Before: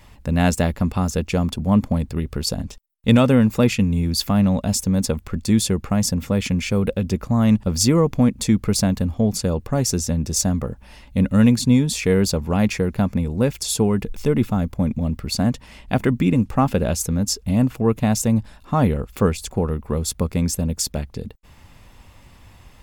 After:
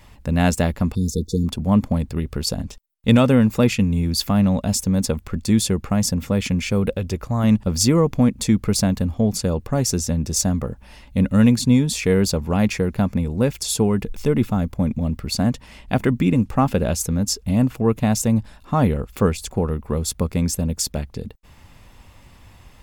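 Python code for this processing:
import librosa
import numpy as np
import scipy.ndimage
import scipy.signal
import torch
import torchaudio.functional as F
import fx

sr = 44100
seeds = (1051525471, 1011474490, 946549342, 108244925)

y = fx.spec_erase(x, sr, start_s=0.95, length_s=0.52, low_hz=490.0, high_hz=3500.0)
y = fx.peak_eq(y, sr, hz=210.0, db=-8.0, octaves=0.77, at=(6.97, 7.44))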